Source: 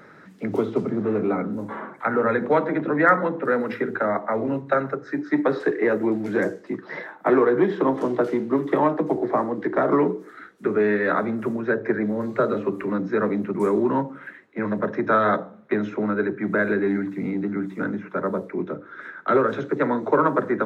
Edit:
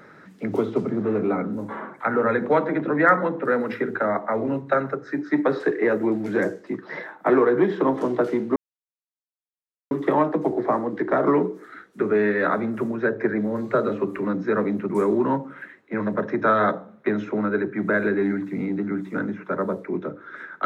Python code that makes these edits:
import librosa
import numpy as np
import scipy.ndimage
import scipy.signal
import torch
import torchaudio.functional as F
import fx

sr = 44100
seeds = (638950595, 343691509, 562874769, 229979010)

y = fx.edit(x, sr, fx.insert_silence(at_s=8.56, length_s=1.35), tone=tone)